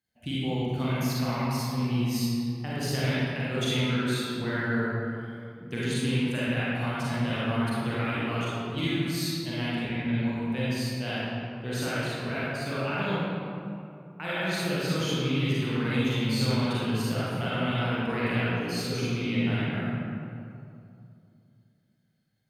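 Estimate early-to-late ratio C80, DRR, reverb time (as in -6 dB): -3.5 dB, -9.0 dB, 2.6 s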